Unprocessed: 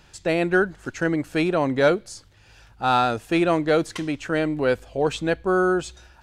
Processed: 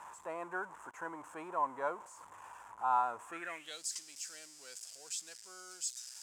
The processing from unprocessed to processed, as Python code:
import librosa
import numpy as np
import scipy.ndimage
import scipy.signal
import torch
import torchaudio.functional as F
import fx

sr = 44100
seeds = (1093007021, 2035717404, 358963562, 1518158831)

y = x + 0.5 * 10.0 ** (-27.5 / 20.0) * np.sign(x)
y = fx.high_shelf_res(y, sr, hz=5900.0, db=10.5, q=3.0)
y = fx.filter_sweep_bandpass(y, sr, from_hz=1000.0, to_hz=4900.0, start_s=3.25, end_s=3.83, q=7.8)
y = F.gain(torch.from_numpy(y), -1.5).numpy()